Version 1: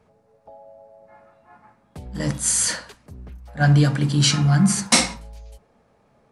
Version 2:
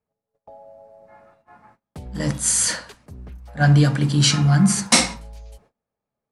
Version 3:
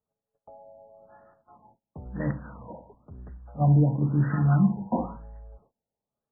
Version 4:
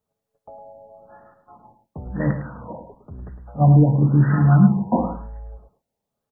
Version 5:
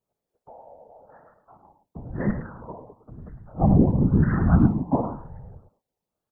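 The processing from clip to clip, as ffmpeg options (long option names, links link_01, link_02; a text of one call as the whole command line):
ffmpeg -i in.wav -af "agate=range=-26dB:threshold=-54dB:ratio=16:detection=peak,volume=1dB" out.wav
ffmpeg -i in.wav -af "afftfilt=real='re*lt(b*sr/1024,950*pow(2000/950,0.5+0.5*sin(2*PI*0.98*pts/sr)))':imag='im*lt(b*sr/1024,950*pow(2000/950,0.5+0.5*sin(2*PI*0.98*pts/sr)))':win_size=1024:overlap=0.75,volume=-5dB" out.wav
ffmpeg -i in.wav -af "aecho=1:1:107:0.316,volume=7dB" out.wav
ffmpeg -i in.wav -af "afftfilt=real='hypot(re,im)*cos(2*PI*random(0))':imag='hypot(re,im)*sin(2*PI*random(1))':win_size=512:overlap=0.75,volume=2dB" out.wav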